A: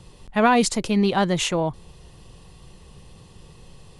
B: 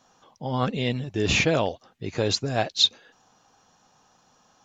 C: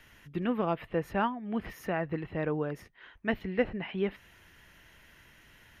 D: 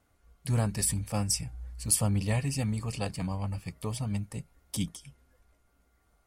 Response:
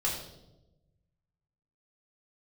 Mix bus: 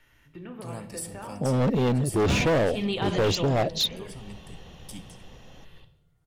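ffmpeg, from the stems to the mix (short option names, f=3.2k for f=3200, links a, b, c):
-filter_complex "[0:a]highshelf=f=4.9k:t=q:w=3:g=-14,dynaudnorm=f=210:g=13:m=11.5dB,adelay=1850,volume=-10dB,asplit=2[a][b];[b]volume=-10.5dB[c];[1:a]lowshelf=f=760:t=q:w=1.5:g=10,adelay=1000,volume=0.5dB[d];[2:a]acompressor=threshold=-33dB:ratio=4,volume=-10dB,asplit=3[e][f][g];[f]volume=-5dB[h];[3:a]highpass=170,adelay=150,volume=-9.5dB,asplit=2[i][j];[j]volume=-14dB[k];[g]apad=whole_len=257839[l];[a][l]sidechaincompress=threshold=-54dB:ratio=8:attack=16:release=185[m];[4:a]atrim=start_sample=2205[n];[c][h][k]amix=inputs=3:normalize=0[o];[o][n]afir=irnorm=-1:irlink=0[p];[m][d][e][i][p]amix=inputs=5:normalize=0,asoftclip=type=hard:threshold=-15.5dB,alimiter=limit=-19.5dB:level=0:latency=1:release=44"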